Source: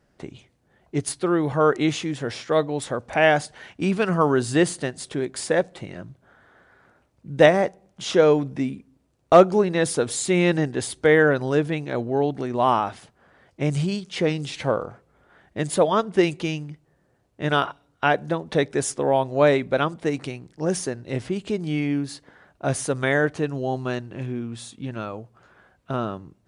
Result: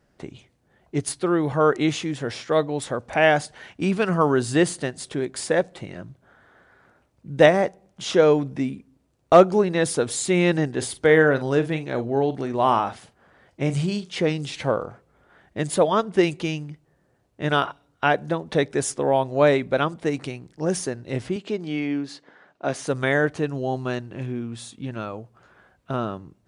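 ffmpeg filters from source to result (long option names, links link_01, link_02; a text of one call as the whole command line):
ffmpeg -i in.wav -filter_complex "[0:a]asettb=1/sr,asplit=3[link_01][link_02][link_03];[link_01]atrim=end=10.764[link_04];[link_02]atrim=start=10.76:end=14.1,asetpts=PTS-STARTPTS,afade=type=in:duration=0.004:curve=qsin,afade=type=out:start_time=3.336:duration=0.004:curve=qsin,asplit=2[link_05][link_06];[link_06]adelay=44,volume=-12.5dB[link_07];[link_05][link_07]amix=inputs=2:normalize=0,atrim=end_sample=147294[link_08];[link_03]atrim=start=14.096[link_09];[link_04][link_08]acrossfade=duration=0.004:curve1=hsin:curve2=qsin[link_10];[link_10][link_09]acrossfade=duration=0.004:curve1=qsin:curve2=hsin,asettb=1/sr,asplit=3[link_11][link_12][link_13];[link_11]atrim=end=21.364[link_14];[link_12]atrim=start=21.36:end=22.87,asetpts=PTS-STARTPTS,afade=type=in:duration=0.004:curve=qsin,afade=type=out:start_time=1.506:duration=0.004:curve=qsin,highpass=220,lowpass=5800[link_15];[link_13]atrim=start=22.866[link_16];[link_14][link_15]acrossfade=duration=0.004:curve1=hsin:curve2=qsin[link_17];[link_17][link_16]acrossfade=duration=0.004:curve1=qsin:curve2=hsin" out.wav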